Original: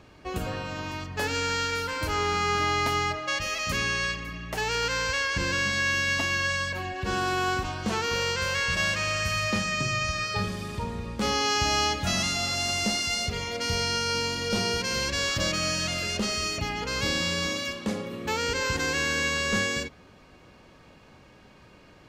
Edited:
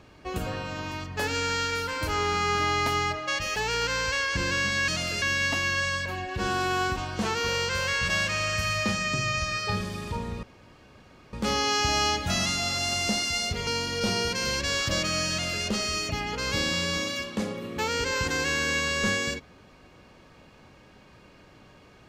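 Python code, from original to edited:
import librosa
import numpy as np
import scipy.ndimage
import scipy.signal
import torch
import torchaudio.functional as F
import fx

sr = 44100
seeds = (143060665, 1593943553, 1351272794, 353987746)

y = fx.edit(x, sr, fx.cut(start_s=3.56, length_s=1.01),
    fx.insert_room_tone(at_s=11.1, length_s=0.9),
    fx.cut(start_s=13.44, length_s=0.72),
    fx.duplicate(start_s=15.79, length_s=0.34, to_s=5.89), tone=tone)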